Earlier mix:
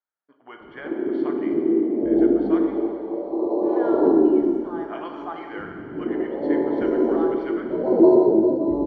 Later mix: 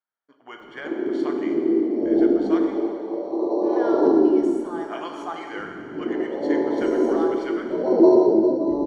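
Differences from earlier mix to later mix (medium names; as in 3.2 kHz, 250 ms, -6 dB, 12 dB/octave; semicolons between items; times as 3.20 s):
background: add peaking EQ 65 Hz -9 dB 2.1 oct; master: remove distance through air 320 m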